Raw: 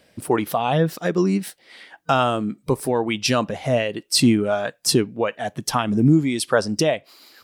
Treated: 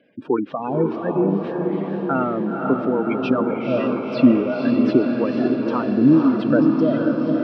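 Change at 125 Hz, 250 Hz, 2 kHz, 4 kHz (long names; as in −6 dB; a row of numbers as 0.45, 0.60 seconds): −3.5, +5.0, −4.0, −15.5 decibels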